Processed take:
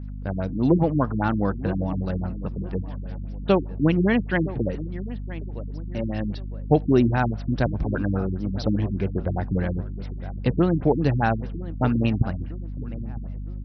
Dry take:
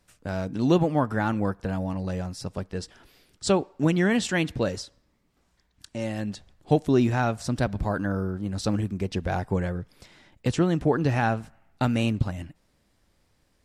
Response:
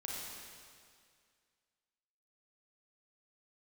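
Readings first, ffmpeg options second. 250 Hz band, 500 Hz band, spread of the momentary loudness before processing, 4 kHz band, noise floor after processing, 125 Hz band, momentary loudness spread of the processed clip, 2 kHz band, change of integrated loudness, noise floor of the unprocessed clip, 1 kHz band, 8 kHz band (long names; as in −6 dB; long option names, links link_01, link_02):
+2.5 dB, +1.5 dB, 13 LU, −5.0 dB, −32 dBFS, +3.5 dB, 14 LU, 0.0 dB, +1.5 dB, −68 dBFS, +1.0 dB, below −20 dB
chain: -filter_complex "[0:a]aeval=exprs='val(0)+0.0178*(sin(2*PI*50*n/s)+sin(2*PI*2*50*n/s)/2+sin(2*PI*3*50*n/s)/3+sin(2*PI*4*50*n/s)/4+sin(2*PI*5*50*n/s)/5)':channel_layout=same,asplit=2[link_01][link_02];[link_02]adelay=959,lowpass=frequency=2000:poles=1,volume=-15dB,asplit=2[link_03][link_04];[link_04]adelay=959,lowpass=frequency=2000:poles=1,volume=0.4,asplit=2[link_05][link_06];[link_06]adelay=959,lowpass=frequency=2000:poles=1,volume=0.4,asplit=2[link_07][link_08];[link_08]adelay=959,lowpass=frequency=2000:poles=1,volume=0.4[link_09];[link_01][link_03][link_05][link_07][link_09]amix=inputs=5:normalize=0,afftfilt=real='re*lt(b*sr/1024,320*pow(6100/320,0.5+0.5*sin(2*PI*4.9*pts/sr)))':imag='im*lt(b*sr/1024,320*pow(6100/320,0.5+0.5*sin(2*PI*4.9*pts/sr)))':win_size=1024:overlap=0.75,volume=2.5dB"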